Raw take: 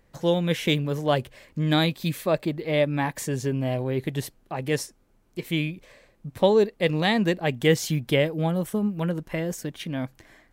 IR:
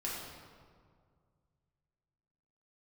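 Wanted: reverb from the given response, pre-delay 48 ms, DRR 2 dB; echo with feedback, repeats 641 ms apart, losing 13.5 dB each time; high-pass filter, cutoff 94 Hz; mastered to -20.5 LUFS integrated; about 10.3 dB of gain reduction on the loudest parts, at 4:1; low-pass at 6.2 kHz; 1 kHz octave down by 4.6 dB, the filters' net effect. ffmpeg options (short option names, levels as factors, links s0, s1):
-filter_complex "[0:a]highpass=94,lowpass=6200,equalizer=f=1000:t=o:g=-6.5,acompressor=threshold=0.0398:ratio=4,aecho=1:1:641|1282:0.211|0.0444,asplit=2[s0][s1];[1:a]atrim=start_sample=2205,adelay=48[s2];[s1][s2]afir=irnorm=-1:irlink=0,volume=0.562[s3];[s0][s3]amix=inputs=2:normalize=0,volume=3.16"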